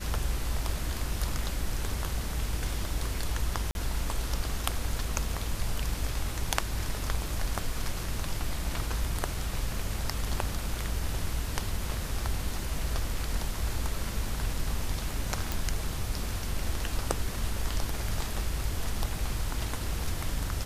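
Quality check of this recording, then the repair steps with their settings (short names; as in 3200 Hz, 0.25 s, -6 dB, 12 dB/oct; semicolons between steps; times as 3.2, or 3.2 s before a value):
3.71–3.75 gap 41 ms
15.52 pop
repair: de-click; interpolate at 3.71, 41 ms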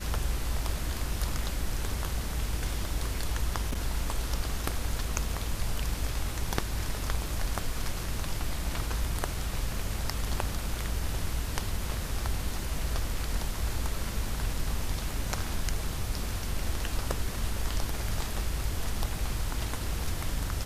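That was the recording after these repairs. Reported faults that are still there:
none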